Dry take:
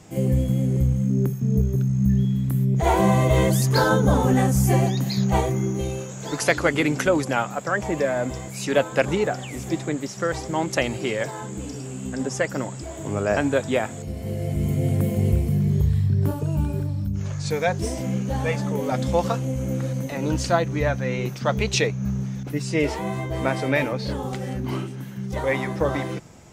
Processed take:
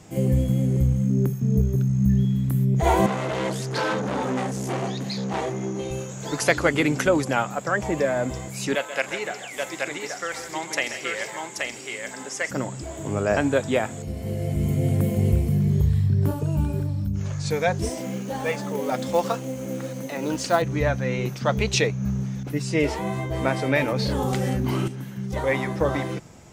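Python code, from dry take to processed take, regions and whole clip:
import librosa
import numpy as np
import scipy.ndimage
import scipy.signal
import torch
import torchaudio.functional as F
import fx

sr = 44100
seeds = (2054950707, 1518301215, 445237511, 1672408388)

y = fx.chain(x, sr, fx.clip_hard(threshold_db=-21.5),
    fx.bandpass_edges(low_hz=190.0, high_hz=6900.0), at=(3.06, 5.91))
y = fx.chain(y, sr, fx.highpass(hz=1300.0, slope=6),
    fx.peak_eq(hz=2100.0, db=5.5, octaves=0.24),
    fx.echo_multitap(ms=(45, 133, 163, 169, 828, 869), db=(-18.5, -11.5, -16.5, -16.5, -3.5, -19.5)), at=(8.75, 12.51))
y = fx.chain(y, sr, fx.highpass(hz=230.0, slope=12),
    fx.quant_companded(bits=6), at=(17.89, 20.62))
y = fx.chain(y, sr, fx.high_shelf(hz=9600.0, db=6.0),
    fx.env_flatten(amount_pct=100), at=(23.88, 24.88))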